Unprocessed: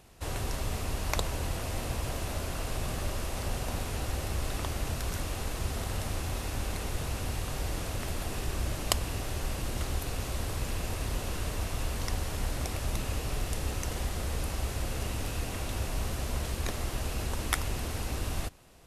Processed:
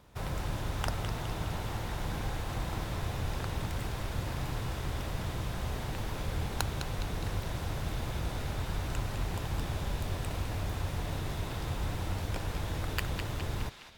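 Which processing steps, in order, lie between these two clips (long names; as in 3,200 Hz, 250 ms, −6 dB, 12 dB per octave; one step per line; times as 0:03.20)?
high-shelf EQ 3,600 Hz −9.5 dB
feedback echo with a band-pass in the loop 279 ms, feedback 59%, band-pass 2,400 Hz, level −5 dB
wrong playback speed 33 rpm record played at 45 rpm
level −1.5 dB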